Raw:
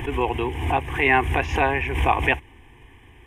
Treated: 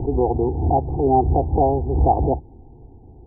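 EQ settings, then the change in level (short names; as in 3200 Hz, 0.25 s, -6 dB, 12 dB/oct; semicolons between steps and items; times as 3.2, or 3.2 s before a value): steep low-pass 820 Hz 72 dB/oct; bell 170 Hz +9.5 dB 0.29 oct; +5.5 dB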